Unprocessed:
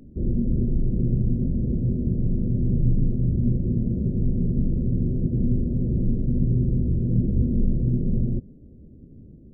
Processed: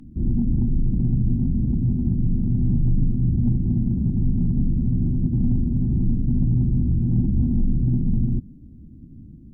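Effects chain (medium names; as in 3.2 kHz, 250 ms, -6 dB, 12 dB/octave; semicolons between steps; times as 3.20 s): sine folder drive 4 dB, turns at -8.5 dBFS; high-order bell 500 Hz -16 dB 1 oct; trim -4.5 dB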